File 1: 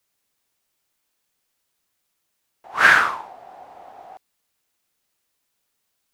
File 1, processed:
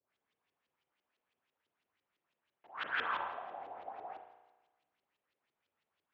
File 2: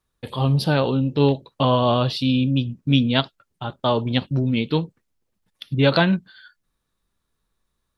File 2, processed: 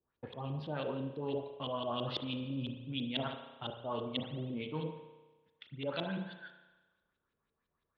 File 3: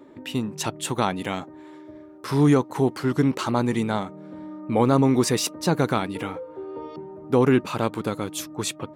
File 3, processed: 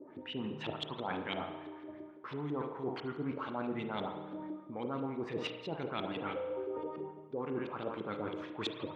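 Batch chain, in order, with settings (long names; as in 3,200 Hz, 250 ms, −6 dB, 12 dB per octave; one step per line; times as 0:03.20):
high-shelf EQ 8,300 Hz −3.5 dB
on a send: feedback echo with a low-pass in the loop 68 ms, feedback 30%, low-pass 1,800 Hz, level −10 dB
on the sum: auto-filter low-pass saw up 6 Hz 370–3,800 Hz
reversed playback
downward compressor 16 to 1, threshold −27 dBFS
reversed playback
dynamic equaliser 3,300 Hz, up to +8 dB, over −54 dBFS, Q 2
high-pass filter 69 Hz
mains-hum notches 60/120/180 Hz
spring reverb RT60 1.2 s, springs 33 ms, chirp 45 ms, DRR 6 dB
level −7.5 dB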